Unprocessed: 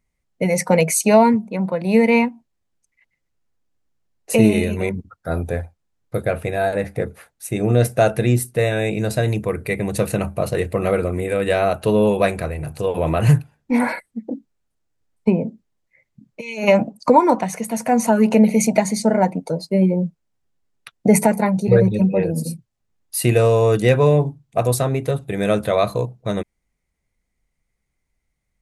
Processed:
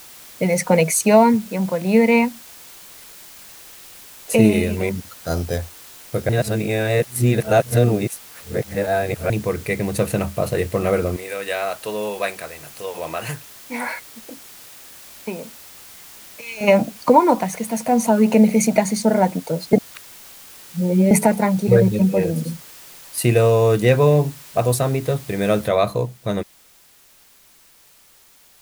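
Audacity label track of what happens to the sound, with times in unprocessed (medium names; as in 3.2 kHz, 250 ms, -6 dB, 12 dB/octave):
4.970000	5.580000	careless resampling rate divided by 8×, down filtered, up hold
6.290000	9.300000	reverse
11.160000	16.610000	high-pass 1.2 kHz 6 dB/octave
17.790000	18.250000	peaking EQ 1.7 kHz -9.5 dB -> -3 dB
19.730000	21.110000	reverse
22.370000	23.180000	treble shelf 5 kHz -9.5 dB
25.680000	25.680000	noise floor step -42 dB -52 dB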